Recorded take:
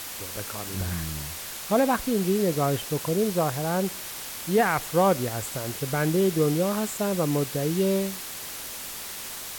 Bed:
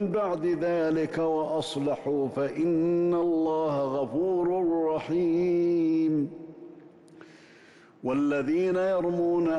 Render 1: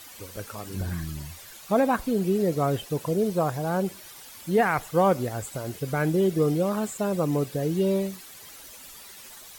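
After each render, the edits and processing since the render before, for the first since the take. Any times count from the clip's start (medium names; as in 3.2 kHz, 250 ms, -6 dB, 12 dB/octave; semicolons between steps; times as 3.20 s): noise reduction 12 dB, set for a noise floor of -37 dBFS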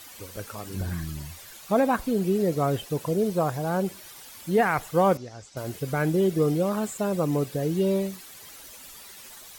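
5.17–5.57 s: four-pole ladder low-pass 6.3 kHz, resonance 60%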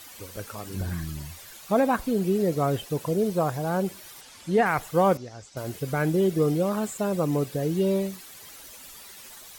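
4.21–4.66 s: low-pass 8.3 kHz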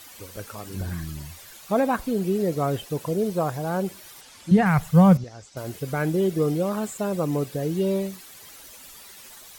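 4.51–5.24 s: resonant low shelf 230 Hz +9 dB, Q 3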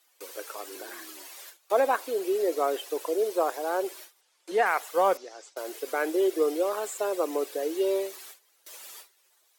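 gate with hold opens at -33 dBFS; steep high-pass 330 Hz 48 dB/octave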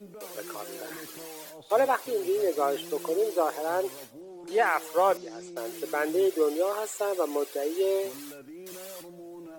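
add bed -19 dB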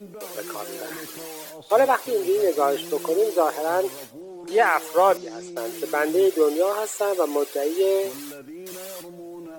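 trim +5.5 dB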